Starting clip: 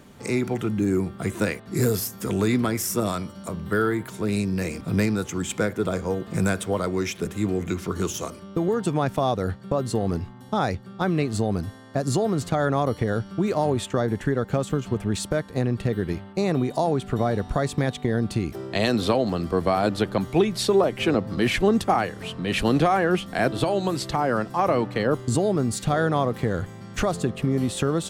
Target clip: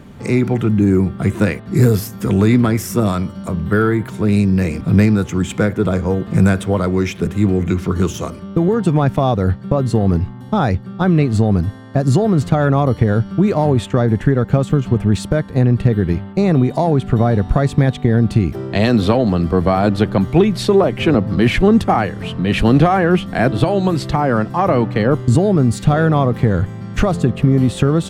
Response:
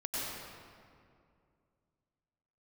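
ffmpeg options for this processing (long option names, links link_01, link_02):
-af "acontrast=58,bass=frequency=250:gain=7,treble=frequency=4000:gain=-7"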